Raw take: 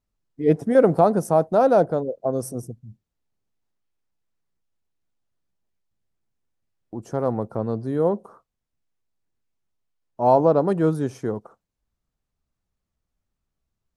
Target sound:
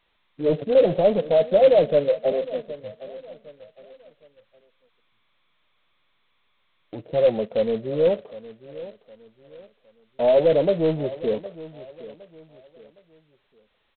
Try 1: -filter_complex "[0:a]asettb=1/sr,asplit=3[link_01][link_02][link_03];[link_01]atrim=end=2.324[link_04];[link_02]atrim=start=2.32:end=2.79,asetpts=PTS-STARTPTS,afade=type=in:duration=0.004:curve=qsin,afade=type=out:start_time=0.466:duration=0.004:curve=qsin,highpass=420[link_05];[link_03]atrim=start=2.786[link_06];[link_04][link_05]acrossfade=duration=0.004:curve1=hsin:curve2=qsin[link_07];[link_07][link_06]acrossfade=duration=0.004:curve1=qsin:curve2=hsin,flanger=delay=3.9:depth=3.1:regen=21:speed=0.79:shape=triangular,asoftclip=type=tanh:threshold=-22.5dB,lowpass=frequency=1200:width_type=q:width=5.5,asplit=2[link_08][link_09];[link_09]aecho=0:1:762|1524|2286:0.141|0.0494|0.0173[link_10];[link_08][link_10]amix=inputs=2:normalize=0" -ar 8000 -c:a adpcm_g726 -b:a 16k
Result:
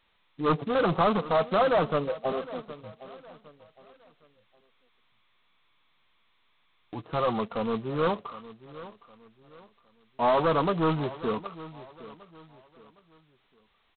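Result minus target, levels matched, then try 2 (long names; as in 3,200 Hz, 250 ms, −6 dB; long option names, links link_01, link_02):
1,000 Hz band +11.5 dB
-filter_complex "[0:a]asettb=1/sr,asplit=3[link_01][link_02][link_03];[link_01]atrim=end=2.324[link_04];[link_02]atrim=start=2.32:end=2.79,asetpts=PTS-STARTPTS,afade=type=in:duration=0.004:curve=qsin,afade=type=out:start_time=0.466:duration=0.004:curve=qsin,highpass=420[link_05];[link_03]atrim=start=2.786[link_06];[link_04][link_05]acrossfade=duration=0.004:curve1=hsin:curve2=qsin[link_07];[link_07][link_06]acrossfade=duration=0.004:curve1=qsin:curve2=hsin,flanger=delay=3.9:depth=3.1:regen=21:speed=0.79:shape=triangular,asoftclip=type=tanh:threshold=-22.5dB,lowpass=frequency=570:width_type=q:width=5.5,asplit=2[link_08][link_09];[link_09]aecho=0:1:762|1524|2286:0.141|0.0494|0.0173[link_10];[link_08][link_10]amix=inputs=2:normalize=0" -ar 8000 -c:a adpcm_g726 -b:a 16k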